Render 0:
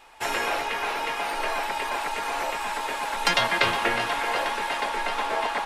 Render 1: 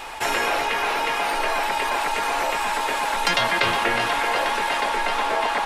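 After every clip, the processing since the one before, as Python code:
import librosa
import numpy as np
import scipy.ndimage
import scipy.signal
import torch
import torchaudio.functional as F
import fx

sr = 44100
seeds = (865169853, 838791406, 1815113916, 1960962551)

y = fx.env_flatten(x, sr, amount_pct=50)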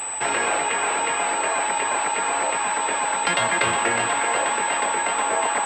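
y = scipy.signal.sosfilt(scipy.signal.butter(4, 82.0, 'highpass', fs=sr, output='sos'), x)
y = fx.pwm(y, sr, carrier_hz=8000.0)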